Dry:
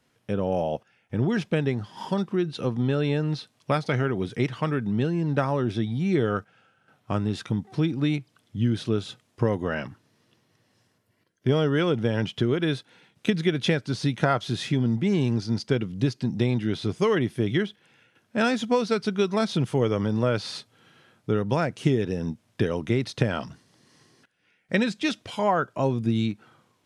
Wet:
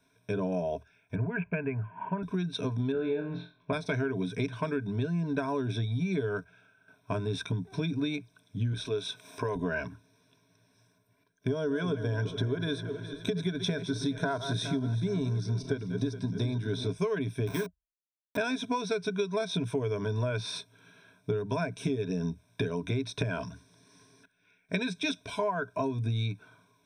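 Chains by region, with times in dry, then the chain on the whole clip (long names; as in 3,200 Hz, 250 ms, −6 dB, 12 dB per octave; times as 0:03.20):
0:01.15–0:02.23: Butterworth low-pass 2,800 Hz 96 dB per octave + parametric band 330 Hz −8.5 dB 1.1 octaves + one half of a high-frequency compander decoder only
0:02.92–0:03.73: high-frequency loss of the air 500 metres + flutter between parallel walls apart 4 metres, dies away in 0.34 s
0:08.73–0:09.56: high-pass filter 420 Hz 6 dB per octave + upward compression, threshold −31 dBFS
0:11.47–0:16.90: feedback delay that plays each chunk backwards 208 ms, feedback 65%, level −13 dB + parametric band 2,500 Hz −10.5 dB 0.41 octaves
0:17.47–0:18.37: hold until the input has moved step −26.5 dBFS + high-pass filter 150 Hz + notch filter 630 Hz, Q 20
whole clip: EQ curve with evenly spaced ripples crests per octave 1.6, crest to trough 17 dB; downward compressor, threshold −23 dBFS; level −4 dB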